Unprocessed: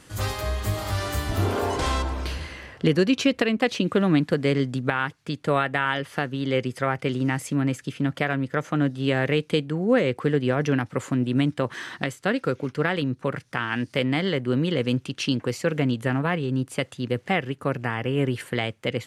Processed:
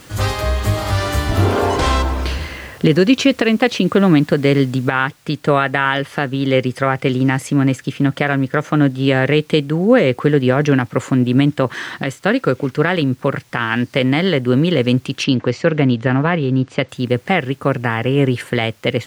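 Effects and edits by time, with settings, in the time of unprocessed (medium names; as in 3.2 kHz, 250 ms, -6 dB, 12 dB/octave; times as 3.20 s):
4.91 s: noise floor step -53 dB -60 dB
15.24–16.89 s: Bessel low-pass 4.5 kHz, order 6
whole clip: treble shelf 8.4 kHz -7.5 dB; loudness maximiser +10 dB; trim -1 dB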